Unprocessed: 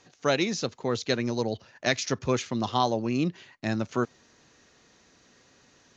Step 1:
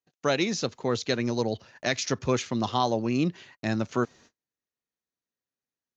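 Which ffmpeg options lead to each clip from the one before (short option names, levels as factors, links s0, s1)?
-filter_complex "[0:a]agate=range=0.0126:threshold=0.00224:ratio=16:detection=peak,asplit=2[s0][s1];[s1]alimiter=limit=0.188:level=0:latency=1:release=98,volume=1.26[s2];[s0][s2]amix=inputs=2:normalize=0,volume=0.501"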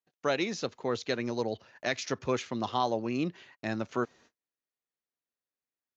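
-af "bass=f=250:g=-6,treble=f=4000:g=-6,volume=0.708"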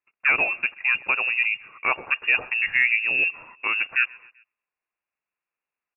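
-filter_complex "[0:a]asplit=2[s0][s1];[s1]adelay=129,lowpass=f=2300:p=1,volume=0.0631,asplit=2[s2][s3];[s3]adelay=129,lowpass=f=2300:p=1,volume=0.53,asplit=2[s4][s5];[s5]adelay=129,lowpass=f=2300:p=1,volume=0.53[s6];[s0][s2][s4][s6]amix=inputs=4:normalize=0,lowpass=f=2500:t=q:w=0.5098,lowpass=f=2500:t=q:w=0.6013,lowpass=f=2500:t=q:w=0.9,lowpass=f=2500:t=q:w=2.563,afreqshift=-2900,volume=2.66"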